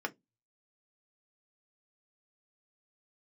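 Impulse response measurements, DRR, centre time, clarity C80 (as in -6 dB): 2.0 dB, 4 ms, 36.0 dB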